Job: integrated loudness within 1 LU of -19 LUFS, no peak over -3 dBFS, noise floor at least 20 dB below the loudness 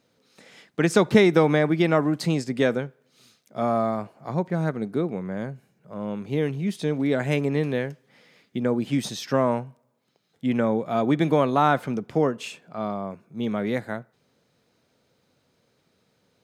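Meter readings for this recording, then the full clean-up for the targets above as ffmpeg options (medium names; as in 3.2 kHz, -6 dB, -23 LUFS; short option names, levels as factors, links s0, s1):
loudness -24.5 LUFS; peak level -4.0 dBFS; loudness target -19.0 LUFS
-> -af "volume=1.88,alimiter=limit=0.708:level=0:latency=1"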